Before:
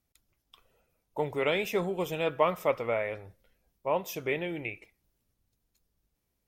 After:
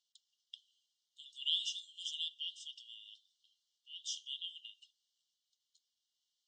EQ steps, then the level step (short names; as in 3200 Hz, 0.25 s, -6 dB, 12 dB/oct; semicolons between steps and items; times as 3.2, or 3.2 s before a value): dynamic EQ 4300 Hz, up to -5 dB, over -58 dBFS, Q 3.6; brick-wall FIR band-pass 2800–8800 Hz; air absorption 110 m; +9.5 dB